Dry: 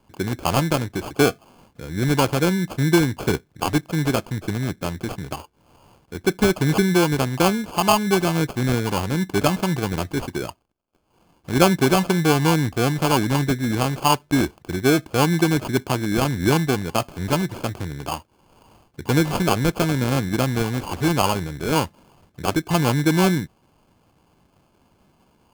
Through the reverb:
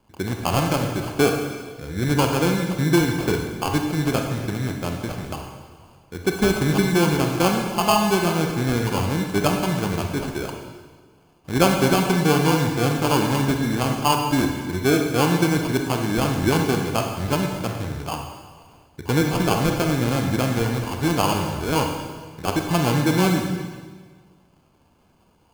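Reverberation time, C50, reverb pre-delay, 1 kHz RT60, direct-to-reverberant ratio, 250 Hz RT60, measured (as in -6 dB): 1.5 s, 4.0 dB, 28 ms, 1.5 s, 2.5 dB, 1.6 s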